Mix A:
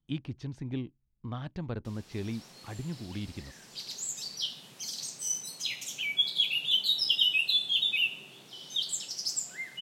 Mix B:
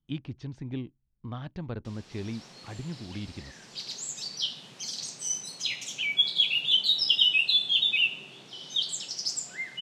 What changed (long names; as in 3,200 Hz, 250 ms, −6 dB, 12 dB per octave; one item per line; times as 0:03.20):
background +3.5 dB
master: add low-pass filter 6,600 Hz 12 dB per octave